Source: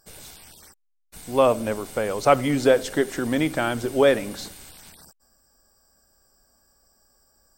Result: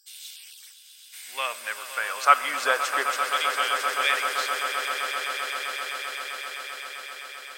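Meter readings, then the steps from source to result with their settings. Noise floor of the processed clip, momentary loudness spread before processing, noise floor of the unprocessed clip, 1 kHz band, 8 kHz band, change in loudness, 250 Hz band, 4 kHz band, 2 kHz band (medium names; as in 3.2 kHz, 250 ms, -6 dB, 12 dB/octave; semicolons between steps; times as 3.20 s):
-50 dBFS, 8 LU, -69 dBFS, +3.5 dB, +3.5 dB, -3.5 dB, -25.0 dB, +7.0 dB, +6.5 dB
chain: LFO high-pass saw down 0.32 Hz 970–3400 Hz; echo with a slow build-up 130 ms, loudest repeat 8, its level -11.5 dB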